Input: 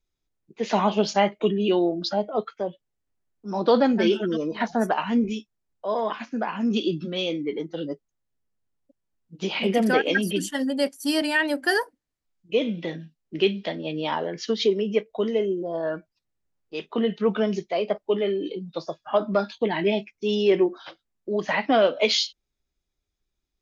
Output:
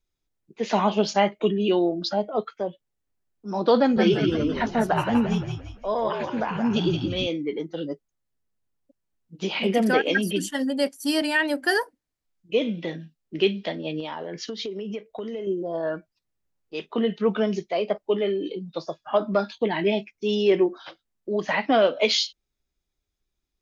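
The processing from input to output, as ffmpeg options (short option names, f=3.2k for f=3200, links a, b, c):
-filter_complex "[0:a]asettb=1/sr,asplit=3[a][b][c];[a]atrim=end=3.794[d];[b]atrim=start=3.79:end=7.27,asetpts=PTS-STARTPTS,afade=t=in:d=0.004:c=qsin,afade=t=out:st=3.476:d=0.004:c=qsin,asplit=6[e][f][g][h][i][j];[f]adelay=171,afreqshift=-59,volume=-5dB[k];[g]adelay=342,afreqshift=-118,volume=-12.7dB[l];[h]adelay=513,afreqshift=-177,volume=-20.5dB[m];[i]adelay=684,afreqshift=-236,volume=-28.2dB[n];[j]adelay=855,afreqshift=-295,volume=-36dB[o];[e][k][l][m][n][o]amix=inputs=6:normalize=0,atrim=end_sample=153468[p];[c]atrim=start=7.266[q];[d][p]acrossfade=d=0.004:c1=hsin:c2=qsin[r];[r][q]acrossfade=d=0.004:c1=qsin:c2=hsin,asettb=1/sr,asplit=3[s][t][u];[s]atrim=end=14.004[v];[t]atrim=start=14:end=15.47,asetpts=PTS-STARTPTS,afade=t=in:d=0.004:c=qsin,afade=t=out:st=1.466:d=0.004:c=qsin,acompressor=threshold=-28dB:ratio=12:attack=3.2:release=140:knee=1:detection=peak[w];[u]atrim=start=15.466[x];[v][w]acrossfade=d=0.004:c1=hsin:c2=qsin[y];[y][x]acrossfade=d=0.004:c1=qsin:c2=hsin"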